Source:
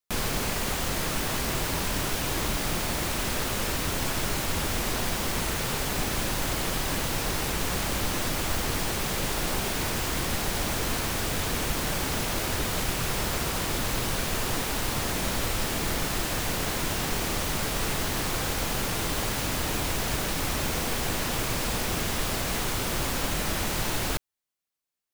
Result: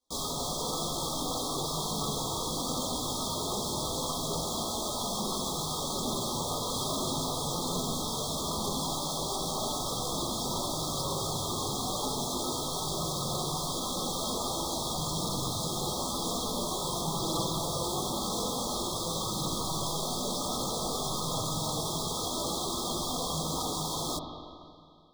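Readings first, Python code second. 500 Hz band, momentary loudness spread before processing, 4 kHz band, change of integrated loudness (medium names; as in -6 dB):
-2.0 dB, 0 LU, -1.5 dB, -3.5 dB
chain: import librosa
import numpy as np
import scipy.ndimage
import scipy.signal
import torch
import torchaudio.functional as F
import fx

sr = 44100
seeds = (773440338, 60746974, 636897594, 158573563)

y = fx.dereverb_blind(x, sr, rt60_s=1.8)
y = scipy.signal.sosfilt(scipy.signal.butter(4, 100.0, 'highpass', fs=sr, output='sos'), y)
y = fx.rider(y, sr, range_db=10, speed_s=0.5)
y = fx.fold_sine(y, sr, drive_db=13, ceiling_db=-19.5)
y = fx.sample_hold(y, sr, seeds[0], rate_hz=14000.0, jitter_pct=0)
y = fx.chorus_voices(y, sr, voices=6, hz=0.12, base_ms=16, depth_ms=4.3, mix_pct=60)
y = fx.brickwall_bandstop(y, sr, low_hz=1300.0, high_hz=3200.0)
y = fx.rev_spring(y, sr, rt60_s=2.3, pass_ms=(43, 51, 57), chirp_ms=50, drr_db=3.0)
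y = y * librosa.db_to_amplitude(-7.0)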